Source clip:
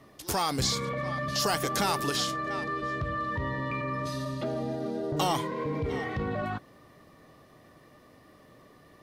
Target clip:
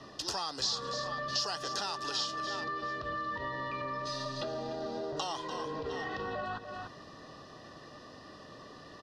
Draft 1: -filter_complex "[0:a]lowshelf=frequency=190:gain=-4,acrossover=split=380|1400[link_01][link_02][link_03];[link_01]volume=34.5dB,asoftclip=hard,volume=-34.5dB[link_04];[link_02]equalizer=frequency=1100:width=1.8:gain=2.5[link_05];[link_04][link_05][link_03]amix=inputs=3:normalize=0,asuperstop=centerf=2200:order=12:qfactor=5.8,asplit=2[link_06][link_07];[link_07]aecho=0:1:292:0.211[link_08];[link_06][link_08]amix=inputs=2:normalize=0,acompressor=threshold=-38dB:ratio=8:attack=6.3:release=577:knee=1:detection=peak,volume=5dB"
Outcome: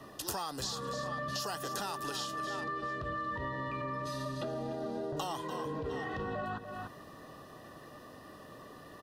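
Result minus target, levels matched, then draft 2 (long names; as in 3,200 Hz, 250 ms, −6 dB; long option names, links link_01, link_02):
4,000 Hz band −5.0 dB; gain into a clipping stage and back: distortion −7 dB
-filter_complex "[0:a]lowshelf=frequency=190:gain=-4,acrossover=split=380|1400[link_01][link_02][link_03];[link_01]volume=43dB,asoftclip=hard,volume=-43dB[link_04];[link_02]equalizer=frequency=1100:width=1.8:gain=2.5[link_05];[link_04][link_05][link_03]amix=inputs=3:normalize=0,asuperstop=centerf=2200:order=12:qfactor=5.8,asplit=2[link_06][link_07];[link_07]aecho=0:1:292:0.211[link_08];[link_06][link_08]amix=inputs=2:normalize=0,acompressor=threshold=-38dB:ratio=8:attack=6.3:release=577:knee=1:detection=peak,lowpass=frequency=5100:width_type=q:width=2.5,volume=5dB"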